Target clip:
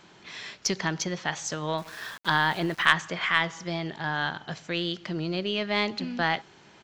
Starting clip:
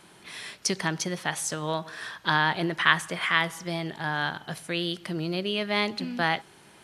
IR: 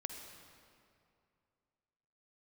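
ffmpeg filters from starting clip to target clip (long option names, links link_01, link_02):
-filter_complex "[0:a]aresample=16000,aresample=44100,asettb=1/sr,asplit=3[link_01][link_02][link_03];[link_01]atrim=end=1.784[link_04];[link_02]atrim=start=1.78:end=2.86,asetpts=PTS-STARTPTS,afade=type=in:duration=0.004:curve=qsin,afade=type=out:start_time=1.076:duration=0.004:curve=qsin,aeval=exprs='val(0)*gte(abs(val(0)),0.00794)':channel_layout=same[link_05];[link_03]atrim=start=2.856[link_06];[link_04][link_05]acrossfade=duration=0.004:curve1=hsin:curve2=qsin[link_07];[link_07][link_06]acrossfade=duration=0.004:curve1=qsin:curve2=hsin,aeval=exprs='0.708*(cos(1*acos(clip(val(0)/0.708,-1,1)))-cos(1*PI/2))+0.126*(cos(2*acos(clip(val(0)/0.708,-1,1)))-cos(2*PI/2))+0.0794*(cos(4*acos(clip(val(0)/0.708,-1,1)))-cos(4*PI/2))+0.00501*(cos(6*acos(clip(val(0)/0.708,-1,1)))-cos(6*PI/2))':channel_layout=same"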